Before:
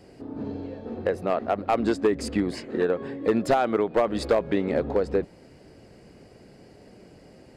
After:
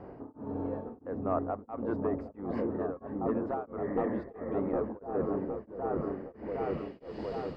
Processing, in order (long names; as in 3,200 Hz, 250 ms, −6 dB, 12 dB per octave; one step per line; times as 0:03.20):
healed spectral selection 0:03.80–0:04.51, 500–2,300 Hz after
reversed playback
downward compressor 6 to 1, threshold −35 dBFS, peak gain reduction 17 dB
reversed playback
low-pass filter sweep 1,100 Hz → 3,800 Hz, 0:05.94–0:07.12
on a send: echo whose low-pass opens from repeat to repeat 762 ms, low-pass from 400 Hz, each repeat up 1 octave, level 0 dB
on the sum: tremolo along a rectified sine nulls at 1.5 Hz
level +3.5 dB